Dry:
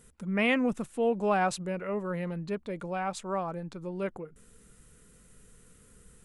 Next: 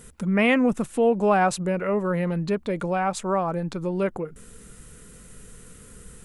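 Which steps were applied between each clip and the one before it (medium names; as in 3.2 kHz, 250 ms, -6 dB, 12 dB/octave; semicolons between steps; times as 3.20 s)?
dynamic bell 3.7 kHz, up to -4 dB, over -47 dBFS, Q 0.89; in parallel at +1 dB: compression, threshold -35 dBFS, peak gain reduction 12 dB; on the sum: trim +4.5 dB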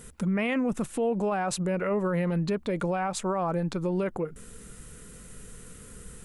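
peak limiter -20.5 dBFS, peak gain reduction 11 dB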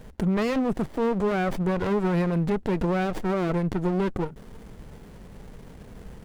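sliding maximum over 33 samples; trim +4 dB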